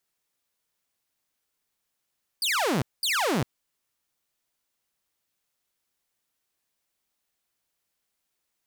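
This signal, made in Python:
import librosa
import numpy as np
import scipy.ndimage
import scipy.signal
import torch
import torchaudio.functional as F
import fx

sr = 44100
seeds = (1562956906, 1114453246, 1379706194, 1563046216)

y = fx.laser_zaps(sr, level_db=-20, start_hz=5000.0, end_hz=110.0, length_s=0.4, wave='saw', shots=2, gap_s=0.21)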